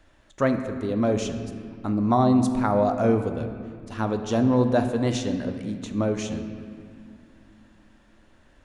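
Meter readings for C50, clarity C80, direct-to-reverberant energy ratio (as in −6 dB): 8.0 dB, 9.0 dB, 6.5 dB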